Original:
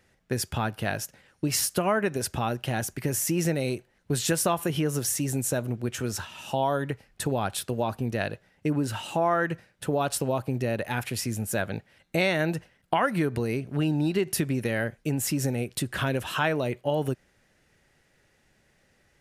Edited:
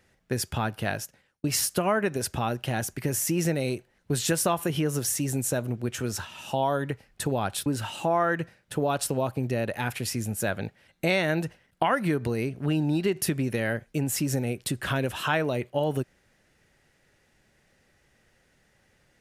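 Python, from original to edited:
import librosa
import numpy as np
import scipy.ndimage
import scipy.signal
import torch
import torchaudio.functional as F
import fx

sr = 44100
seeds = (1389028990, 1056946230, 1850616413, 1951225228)

y = fx.edit(x, sr, fx.fade_out_span(start_s=0.91, length_s=0.53),
    fx.cut(start_s=7.66, length_s=1.11), tone=tone)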